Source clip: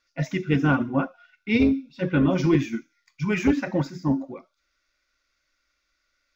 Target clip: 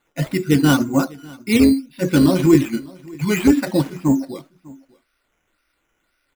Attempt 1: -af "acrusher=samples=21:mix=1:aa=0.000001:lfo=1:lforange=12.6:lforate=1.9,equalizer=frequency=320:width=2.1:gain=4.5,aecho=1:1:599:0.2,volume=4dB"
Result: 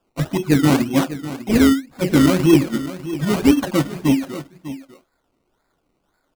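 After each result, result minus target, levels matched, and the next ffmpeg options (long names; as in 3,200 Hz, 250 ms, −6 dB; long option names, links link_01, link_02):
echo-to-direct +9.5 dB; sample-and-hold swept by an LFO: distortion +6 dB
-af "acrusher=samples=21:mix=1:aa=0.000001:lfo=1:lforange=12.6:lforate=1.9,equalizer=frequency=320:width=2.1:gain=4.5,aecho=1:1:599:0.0668,volume=4dB"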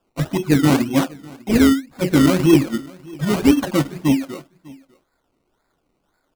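sample-and-hold swept by an LFO: distortion +6 dB
-af "acrusher=samples=8:mix=1:aa=0.000001:lfo=1:lforange=4.8:lforate=1.9,equalizer=frequency=320:width=2.1:gain=4.5,aecho=1:1:599:0.0668,volume=4dB"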